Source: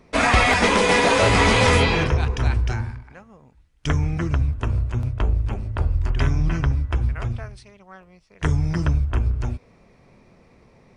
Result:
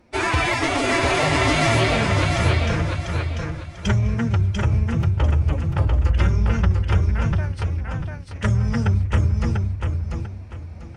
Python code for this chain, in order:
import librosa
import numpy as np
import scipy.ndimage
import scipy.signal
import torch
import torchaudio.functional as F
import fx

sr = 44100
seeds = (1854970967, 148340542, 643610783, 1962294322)

p1 = fx.rider(x, sr, range_db=3, speed_s=2.0)
p2 = 10.0 ** (-9.5 / 20.0) * np.tanh(p1 / 10.0 ** (-9.5 / 20.0))
p3 = fx.pitch_keep_formants(p2, sr, semitones=5.5)
y = p3 + fx.echo_feedback(p3, sr, ms=694, feedback_pct=29, wet_db=-4, dry=0)